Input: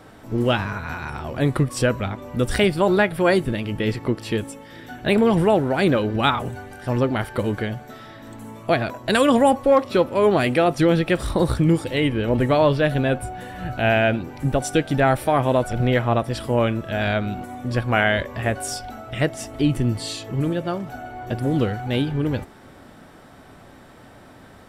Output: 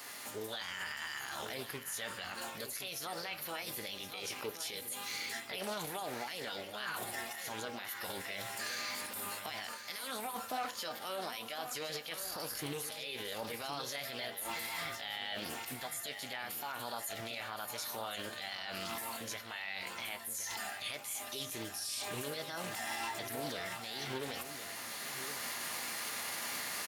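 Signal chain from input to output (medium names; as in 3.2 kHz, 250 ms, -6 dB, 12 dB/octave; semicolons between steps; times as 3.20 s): recorder AGC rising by 7.6 dB/s; differentiator; reverse; compression 6:1, threshold -45 dBFS, peak gain reduction 19 dB; reverse; peak limiter -43.5 dBFS, peak gain reduction 13.5 dB; formant shift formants +5 st; delay 982 ms -10 dB; on a send at -14 dB: reverberation RT60 0.35 s, pre-delay 4 ms; on the sum: speed mistake 48 kHz file played as 44.1 kHz; loudspeaker Doppler distortion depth 0.23 ms; trim +13.5 dB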